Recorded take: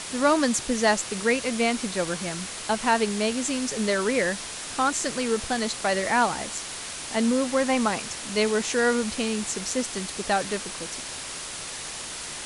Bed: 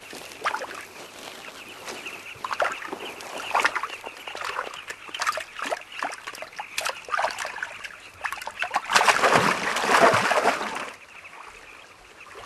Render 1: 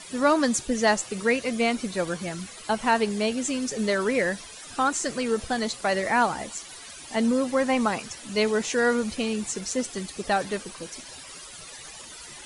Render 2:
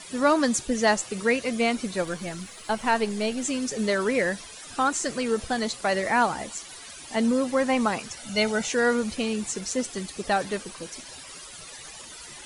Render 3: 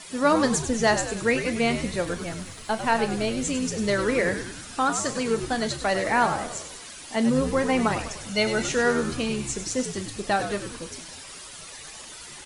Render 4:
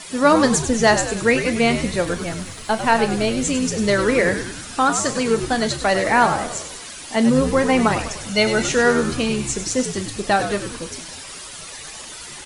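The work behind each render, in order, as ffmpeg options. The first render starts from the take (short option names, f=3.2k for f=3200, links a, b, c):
-af "afftdn=nr=14:nf=-36"
-filter_complex "[0:a]asettb=1/sr,asplit=3[a][b][c];[a]atrim=end=2.024[d];[b]atrim=start=2.02:end=3.43,asetpts=PTS-STARTPTS,afade=t=in:d=0.004:c=qsin,afade=t=out:st=1.406:d=0.004:c=qsin,aeval=exprs='if(lt(val(0),0),0.708*val(0),val(0))':c=same[e];[c]atrim=start=3.426[f];[d][e]acrossfade=d=0.004:c1=hsin:c2=qsin[g];[g][f]acrossfade=d=0.004:c1=qsin:c2=hsin,asettb=1/sr,asplit=3[h][i][j];[h]atrim=end=8.174[k];[i]atrim=start=8.17:end=8.68,asetpts=PTS-STARTPTS,afade=t=in:d=0.004:c=qsin,afade=t=out:st=0.506:d=0.004:c=qsin,aecho=1:1:1.4:0.65,atrim=end_sample=22491[l];[j]atrim=start=8.676[m];[k][l]acrossfade=d=0.004:c1=hsin:c2=qsin[n];[n][m]acrossfade=d=0.004:c1=qsin:c2=hsin"
-filter_complex "[0:a]asplit=2[a][b];[b]adelay=35,volume=-13.5dB[c];[a][c]amix=inputs=2:normalize=0,asplit=7[d][e][f][g][h][i][j];[e]adelay=99,afreqshift=-81,volume=-9.5dB[k];[f]adelay=198,afreqshift=-162,volume=-14.9dB[l];[g]adelay=297,afreqshift=-243,volume=-20.2dB[m];[h]adelay=396,afreqshift=-324,volume=-25.6dB[n];[i]adelay=495,afreqshift=-405,volume=-30.9dB[o];[j]adelay=594,afreqshift=-486,volume=-36.3dB[p];[d][k][l][m][n][o][p]amix=inputs=7:normalize=0"
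-af "volume=6dB"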